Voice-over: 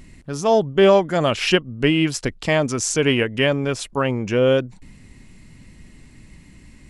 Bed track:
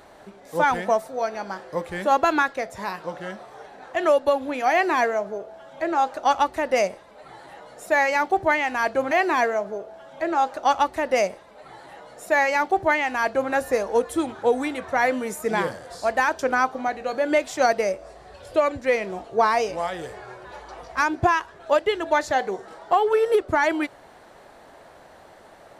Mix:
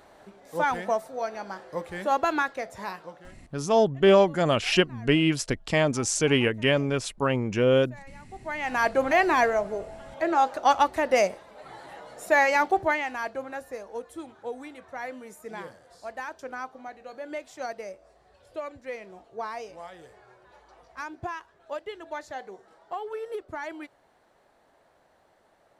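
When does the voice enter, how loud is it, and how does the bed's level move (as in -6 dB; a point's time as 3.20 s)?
3.25 s, -4.0 dB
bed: 2.91 s -5 dB
3.62 s -28 dB
8.24 s -28 dB
8.74 s -0.5 dB
12.63 s -0.5 dB
13.68 s -15 dB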